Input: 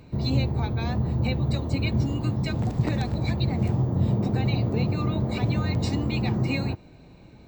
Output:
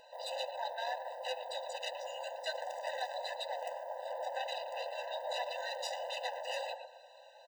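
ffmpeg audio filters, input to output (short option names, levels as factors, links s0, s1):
-filter_complex "[0:a]asplit=2[s0][s1];[s1]adelay=116,lowpass=f=2500:p=1,volume=0.316,asplit=2[s2][s3];[s3]adelay=116,lowpass=f=2500:p=1,volume=0.33,asplit=2[s4][s5];[s5]adelay=116,lowpass=f=2500:p=1,volume=0.33,asplit=2[s6][s7];[s7]adelay=116,lowpass=f=2500:p=1,volume=0.33[s8];[s0][s2][s4][s6][s8]amix=inputs=5:normalize=0,asoftclip=type=tanh:threshold=0.0447,afftfilt=real='re*eq(mod(floor(b*sr/1024/510),2),1)':imag='im*eq(mod(floor(b*sr/1024/510),2),1)':win_size=1024:overlap=0.75,volume=1.41"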